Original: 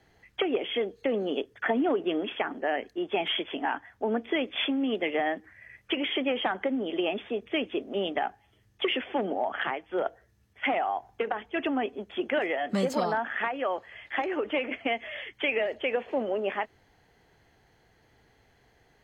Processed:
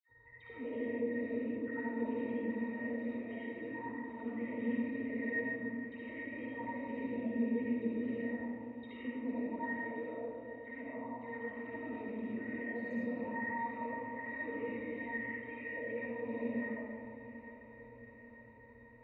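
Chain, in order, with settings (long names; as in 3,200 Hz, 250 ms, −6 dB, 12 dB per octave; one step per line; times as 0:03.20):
loose part that buzzes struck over −43 dBFS, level −25 dBFS
high-shelf EQ 3,700 Hz −9.5 dB
harmonic and percussive parts rebalanced harmonic −18 dB
octave-band graphic EQ 125/500/4,000 Hz −9/−9/−9 dB
brickwall limiter −32.5 dBFS, peak gain reduction 11.5 dB
reversed playback
downward compressor 20 to 1, threshold −47 dBFS, peak gain reduction 11 dB
reversed playback
flanger swept by the level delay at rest 2.4 ms, full sweep at −46 dBFS
resonances in every octave A#, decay 0.12 s
all-pass dispersion lows, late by 89 ms, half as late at 1,500 Hz
on a send: feedback delay with all-pass diffusion 838 ms, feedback 60%, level −14.5 dB
on the sum: comb and all-pass reverb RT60 2.4 s, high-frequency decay 0.3×, pre-delay 30 ms, DRR −7.5 dB
level +18 dB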